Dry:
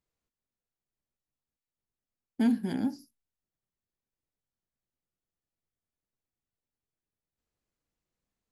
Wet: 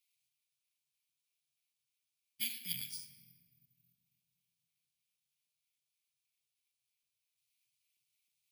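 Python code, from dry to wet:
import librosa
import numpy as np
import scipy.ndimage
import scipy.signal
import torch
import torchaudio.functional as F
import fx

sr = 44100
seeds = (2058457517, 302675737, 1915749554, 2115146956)

y = scipy.signal.sosfilt(scipy.signal.cheby1(5, 1.0, [140.0, 2300.0], 'bandstop', fs=sr, output='sos'), x)
y = fx.filter_lfo_highpass(y, sr, shape='square', hz=3.2, low_hz=290.0, high_hz=1800.0, q=1.8)
y = fx.room_shoebox(y, sr, seeds[0], volume_m3=2100.0, walls='mixed', distance_m=0.79)
y = (np.kron(scipy.signal.resample_poly(y, 1, 3), np.eye(3)[0]) * 3)[:len(y)]
y = y * 10.0 ** (7.5 / 20.0)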